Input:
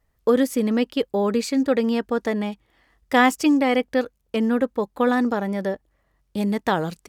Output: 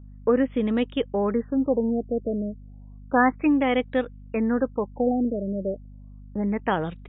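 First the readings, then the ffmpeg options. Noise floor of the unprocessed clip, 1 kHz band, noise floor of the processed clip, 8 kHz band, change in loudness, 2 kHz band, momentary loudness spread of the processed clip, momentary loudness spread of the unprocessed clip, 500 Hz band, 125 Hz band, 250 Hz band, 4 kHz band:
-69 dBFS, -3.0 dB, -44 dBFS, under -40 dB, -3.0 dB, -4.5 dB, 9 LU, 9 LU, -2.5 dB, n/a, -2.5 dB, -8.0 dB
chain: -af "aeval=exprs='val(0)+0.01*(sin(2*PI*50*n/s)+sin(2*PI*2*50*n/s)/2+sin(2*PI*3*50*n/s)/3+sin(2*PI*4*50*n/s)/4+sin(2*PI*5*50*n/s)/5)':c=same,afftfilt=real='re*lt(b*sr/1024,660*pow(3900/660,0.5+0.5*sin(2*PI*0.32*pts/sr)))':imag='im*lt(b*sr/1024,660*pow(3900/660,0.5+0.5*sin(2*PI*0.32*pts/sr)))':win_size=1024:overlap=0.75,volume=-2.5dB"

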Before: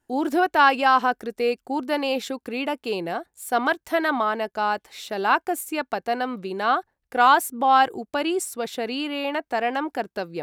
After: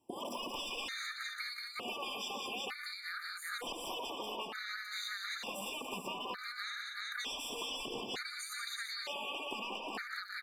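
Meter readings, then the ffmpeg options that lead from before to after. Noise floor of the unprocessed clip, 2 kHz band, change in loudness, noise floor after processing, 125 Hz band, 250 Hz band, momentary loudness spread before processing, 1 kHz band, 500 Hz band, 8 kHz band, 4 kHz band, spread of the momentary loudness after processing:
-79 dBFS, -14.0 dB, -16.5 dB, -47 dBFS, n/a, -22.0 dB, 12 LU, -23.0 dB, -21.0 dB, -9.5 dB, -5.5 dB, 2 LU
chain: -filter_complex "[0:a]acrossover=split=5800[a][b];[b]acompressor=threshold=-48dB:ratio=4:attack=1:release=60[c];[a][c]amix=inputs=2:normalize=0,highpass=150,acrossover=split=890[d][e];[e]asoftclip=type=tanh:threshold=-19.5dB[f];[d][f]amix=inputs=2:normalize=0,afftfilt=real='re*lt(hypot(re,im),0.112)':imag='im*lt(hypot(re,im),0.112)':win_size=1024:overlap=0.75,asplit=2[g][h];[h]aecho=0:1:73|120|181|199|357|376:0.266|0.355|0.422|0.178|0.282|0.562[i];[g][i]amix=inputs=2:normalize=0,acompressor=threshold=-37dB:ratio=16,afftfilt=real='re*gt(sin(2*PI*0.55*pts/sr)*(1-2*mod(floor(b*sr/1024/1200),2)),0)':imag='im*gt(sin(2*PI*0.55*pts/sr)*(1-2*mod(floor(b*sr/1024/1200),2)),0)':win_size=1024:overlap=0.75,volume=3dB"

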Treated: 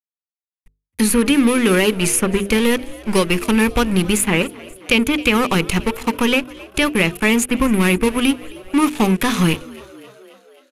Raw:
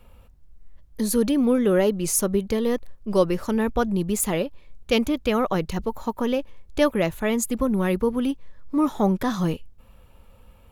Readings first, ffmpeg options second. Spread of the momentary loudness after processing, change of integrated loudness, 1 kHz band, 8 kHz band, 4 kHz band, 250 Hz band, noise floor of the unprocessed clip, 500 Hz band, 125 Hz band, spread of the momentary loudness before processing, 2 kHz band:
6 LU, +6.5 dB, +6.5 dB, +7.0 dB, +12.5 dB, +6.5 dB, -52 dBFS, +3.0 dB, +6.5 dB, 8 LU, +14.0 dB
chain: -filter_complex "[0:a]aeval=exprs='sgn(val(0))*max(abs(val(0))-0.0188,0)':c=same,acrossover=split=1000|2700[a][b][c];[a]acompressor=threshold=-22dB:ratio=4[d];[b]acompressor=threshold=-36dB:ratio=4[e];[c]acompressor=threshold=-41dB:ratio=4[f];[d][e][f]amix=inputs=3:normalize=0,bandreject=f=50:t=h:w=6,bandreject=f=100:t=h:w=6,bandreject=f=150:t=h:w=6,bandreject=f=200:t=h:w=6,bandreject=f=250:t=h:w=6,bandreject=f=300:t=h:w=6,bandreject=f=350:t=h:w=6,bandreject=f=400:t=h:w=6,bandreject=f=450:t=h:w=6,aresample=32000,aresample=44100,equalizer=f=630:t=o:w=0.67:g=-10,equalizer=f=2.5k:t=o:w=0.67:g=11,equalizer=f=10k:t=o:w=0.67:g=11,asplit=2[g][h];[h]asplit=5[i][j][k][l][m];[i]adelay=266,afreqshift=64,volume=-21.5dB[n];[j]adelay=532,afreqshift=128,volume=-25.5dB[o];[k]adelay=798,afreqshift=192,volume=-29.5dB[p];[l]adelay=1064,afreqshift=256,volume=-33.5dB[q];[m]adelay=1330,afreqshift=320,volume=-37.6dB[r];[n][o][p][q][r]amix=inputs=5:normalize=0[s];[g][s]amix=inputs=2:normalize=0,alimiter=level_in=13dB:limit=-1dB:release=50:level=0:latency=1,volume=-1dB"

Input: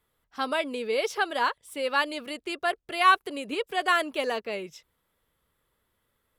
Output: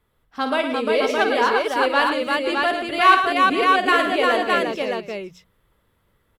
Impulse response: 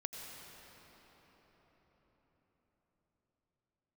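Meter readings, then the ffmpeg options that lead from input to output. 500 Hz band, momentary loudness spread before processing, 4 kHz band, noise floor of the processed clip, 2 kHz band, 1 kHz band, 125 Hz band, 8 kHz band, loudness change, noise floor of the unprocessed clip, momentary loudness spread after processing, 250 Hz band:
+9.5 dB, 13 LU, +7.0 dB, -67 dBFS, +8.0 dB, +8.5 dB, n/a, +3.0 dB, +8.5 dB, -76 dBFS, 10 LU, +11.0 dB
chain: -filter_complex "[0:a]bandreject=f=60:t=h:w=6,bandreject=f=120:t=h:w=6,bandreject=f=180:t=h:w=6,asplit=2[a][b];[b]adynamicsmooth=sensitivity=3:basefreq=5.4k,volume=-1dB[c];[a][c]amix=inputs=2:normalize=0,lowshelf=f=260:g=7,aecho=1:1:50|112|180|350|506|615:0.398|0.376|0.119|0.708|0.15|0.708,volume=-1dB"

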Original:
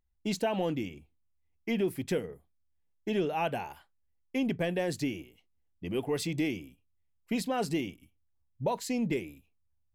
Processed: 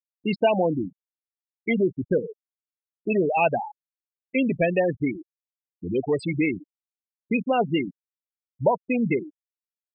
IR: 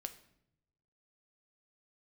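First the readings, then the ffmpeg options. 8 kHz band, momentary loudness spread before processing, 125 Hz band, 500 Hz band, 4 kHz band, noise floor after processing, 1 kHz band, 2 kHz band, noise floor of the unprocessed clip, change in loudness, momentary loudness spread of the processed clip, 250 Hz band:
under -15 dB, 11 LU, +6.0 dB, +9.0 dB, 0.0 dB, under -85 dBFS, +9.0 dB, +9.0 dB, -73 dBFS, +8.0 dB, 13 LU, +6.5 dB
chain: -filter_complex "[0:a]afftfilt=real='re*gte(hypot(re,im),0.0501)':imag='im*gte(hypot(re,im),0.0501)':win_size=1024:overlap=0.75,acrossover=split=2800[a][b];[b]acompressor=threshold=-54dB:ratio=4:attack=1:release=60[c];[a][c]amix=inputs=2:normalize=0,equalizer=f=630:t=o:w=0.67:g=5,equalizer=f=2.5k:t=o:w=0.67:g=11,equalizer=f=6.3k:t=o:w=0.67:g=11,volume=6.5dB"

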